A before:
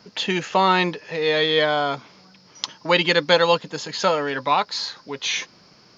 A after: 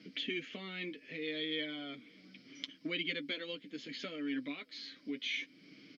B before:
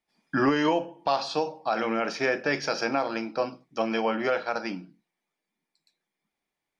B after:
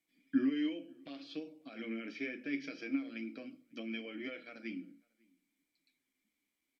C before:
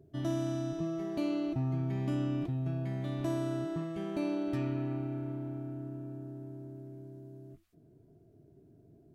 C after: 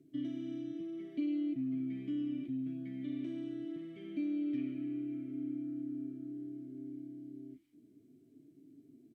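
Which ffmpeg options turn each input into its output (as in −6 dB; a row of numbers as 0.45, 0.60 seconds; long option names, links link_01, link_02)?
-filter_complex "[0:a]equalizer=frequency=730:width_type=o:width=1.2:gain=5,acompressor=threshold=-42dB:ratio=2,flanger=delay=6.2:depth=3.4:regen=-29:speed=0.7:shape=sinusoidal,asplit=3[link_01][link_02][link_03];[link_01]bandpass=frequency=270:width_type=q:width=8,volume=0dB[link_04];[link_02]bandpass=frequency=2290:width_type=q:width=8,volume=-6dB[link_05];[link_03]bandpass=frequency=3010:width_type=q:width=8,volume=-9dB[link_06];[link_04][link_05][link_06]amix=inputs=3:normalize=0,asplit=2[link_07][link_08];[link_08]adelay=548.1,volume=-29dB,highshelf=frequency=4000:gain=-12.3[link_09];[link_07][link_09]amix=inputs=2:normalize=0,volume=13dB" -ar 32000 -c:a sbc -b:a 192k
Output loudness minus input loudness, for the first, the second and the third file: −19.0, −12.5, −4.0 LU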